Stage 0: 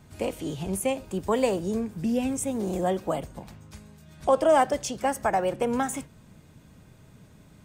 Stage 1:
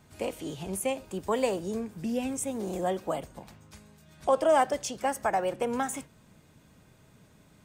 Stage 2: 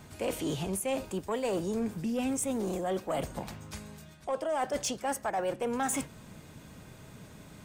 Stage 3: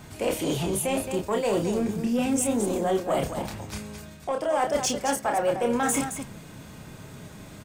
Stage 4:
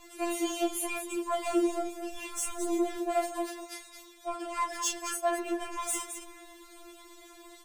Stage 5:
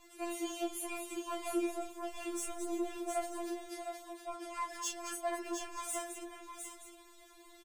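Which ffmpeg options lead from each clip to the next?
-af "lowshelf=f=240:g=-6.5,volume=-2dB"
-af "areverse,acompressor=threshold=-35dB:ratio=16,areverse,asoftclip=type=tanh:threshold=-31.5dB,volume=8.5dB"
-af "aecho=1:1:29.15|218.7:0.562|0.398,volume=5dB"
-af "asoftclip=type=hard:threshold=-21dB,afftfilt=real='re*4*eq(mod(b,16),0)':imag='im*4*eq(mod(b,16),0)':win_size=2048:overlap=0.75,volume=-1dB"
-af "aecho=1:1:710:0.473,volume=-7.5dB"

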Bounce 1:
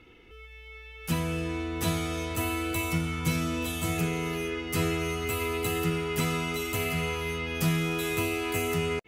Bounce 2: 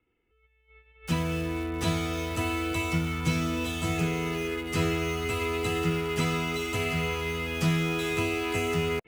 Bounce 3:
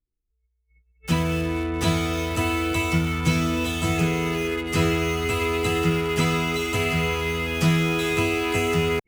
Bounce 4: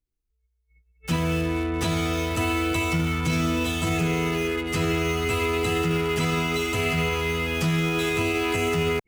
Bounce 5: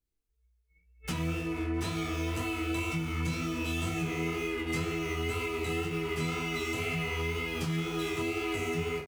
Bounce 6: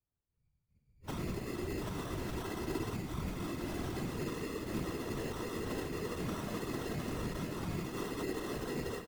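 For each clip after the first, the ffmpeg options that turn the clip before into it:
-filter_complex "[0:a]lowpass=7.1k,agate=range=-21dB:threshold=-43dB:ratio=16:detection=peak,acrossover=split=200|1000|3200[a][b][c][d];[d]acrusher=bits=7:mix=0:aa=0.000001[e];[a][b][c][e]amix=inputs=4:normalize=0,volume=1dB"
-af "anlmdn=0.0631,volume=5.5dB"
-af "alimiter=limit=-15.5dB:level=0:latency=1:release=10"
-af "aecho=1:1:13|46:0.355|0.376,acompressor=threshold=-29dB:ratio=6,flanger=delay=18.5:depth=6.2:speed=2,volume=1.5dB"
-af "highshelf=f=4.1k:t=q:w=1.5:g=-8.5,acrusher=samples=19:mix=1:aa=0.000001,afftfilt=real='hypot(re,im)*cos(2*PI*random(0))':imag='hypot(re,im)*sin(2*PI*random(1))':win_size=512:overlap=0.75"

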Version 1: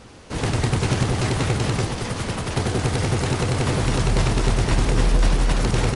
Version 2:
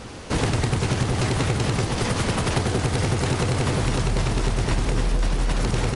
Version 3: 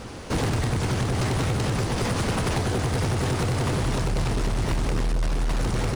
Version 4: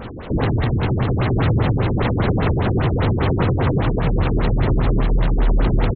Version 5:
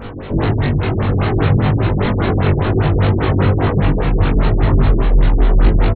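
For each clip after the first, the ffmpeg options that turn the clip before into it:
-af "acompressor=threshold=-26dB:ratio=6,volume=7dB"
-filter_complex "[0:a]asplit=2[a][b];[b]acrusher=samples=11:mix=1:aa=0.000001,volume=-11dB[c];[a][c]amix=inputs=2:normalize=0,asoftclip=type=hard:threshold=-18dB,volume=-2dB"
-af "aecho=1:1:1023:0.562,afftfilt=real='re*lt(b*sr/1024,400*pow(4400/400,0.5+0.5*sin(2*PI*5*pts/sr)))':imag='im*lt(b*sr/1024,400*pow(4400/400,0.5+0.5*sin(2*PI*5*pts/sr)))':win_size=1024:overlap=0.75,volume=6dB"
-filter_complex "[0:a]flanger=delay=18:depth=2.6:speed=2.2,asplit=2[a][b];[b]adelay=21,volume=-3dB[c];[a][c]amix=inputs=2:normalize=0,volume=4.5dB"

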